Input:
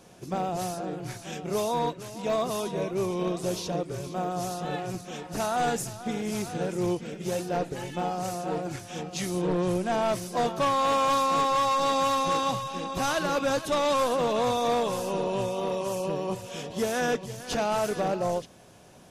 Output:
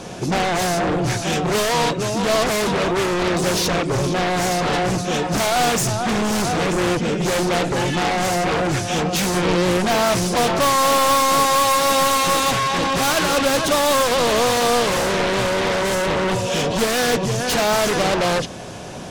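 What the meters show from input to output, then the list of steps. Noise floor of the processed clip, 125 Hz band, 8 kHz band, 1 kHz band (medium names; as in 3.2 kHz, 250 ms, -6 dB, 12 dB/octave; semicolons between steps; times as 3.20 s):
-26 dBFS, +11.0 dB, +14.5 dB, +8.5 dB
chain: low-pass 8.2 kHz; in parallel at -10.5 dB: sine folder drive 18 dB, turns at -16 dBFS; on the sum: trim +6.5 dB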